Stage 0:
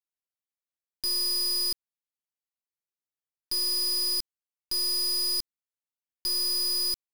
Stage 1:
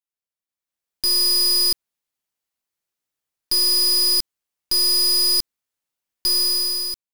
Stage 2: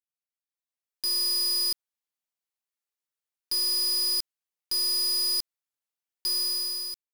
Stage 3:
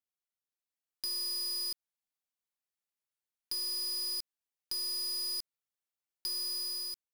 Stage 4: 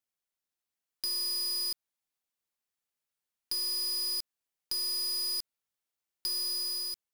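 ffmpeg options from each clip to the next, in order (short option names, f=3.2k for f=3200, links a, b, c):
-af "dynaudnorm=f=160:g=9:m=11dB,volume=-1.5dB"
-af "lowshelf=f=290:g=-9.5,volume=-8dB"
-af "acompressor=threshold=-31dB:ratio=6,volume=-4dB"
-af "acrusher=bits=6:mode=log:mix=0:aa=0.000001,volume=3dB"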